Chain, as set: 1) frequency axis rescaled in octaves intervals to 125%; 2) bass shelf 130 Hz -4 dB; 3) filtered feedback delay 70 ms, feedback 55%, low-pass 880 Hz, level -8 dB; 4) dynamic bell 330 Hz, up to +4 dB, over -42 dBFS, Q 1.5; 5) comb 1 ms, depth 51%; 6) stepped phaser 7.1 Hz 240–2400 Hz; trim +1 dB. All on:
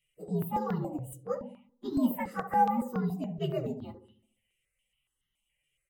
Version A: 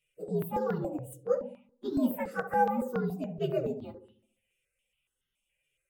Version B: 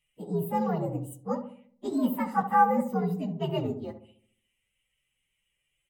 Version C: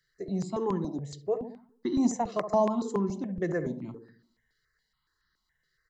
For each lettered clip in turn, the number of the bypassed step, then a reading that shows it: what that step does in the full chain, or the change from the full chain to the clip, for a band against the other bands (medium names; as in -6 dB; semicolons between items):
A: 5, 500 Hz band +7.0 dB; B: 6, 2 kHz band +2.5 dB; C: 1, 500 Hz band +6.0 dB